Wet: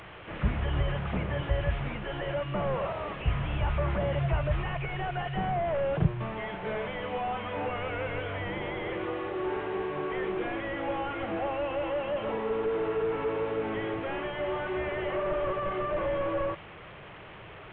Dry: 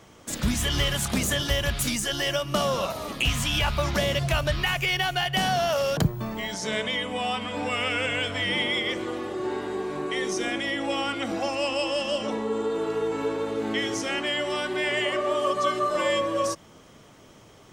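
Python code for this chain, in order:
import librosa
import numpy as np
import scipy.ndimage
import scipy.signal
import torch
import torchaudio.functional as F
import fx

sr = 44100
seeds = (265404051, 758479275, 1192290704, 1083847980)

y = fx.delta_mod(x, sr, bps=16000, step_db=-39.0)
y = fx.peak_eq(y, sr, hz=250.0, db=-14.0, octaves=0.41)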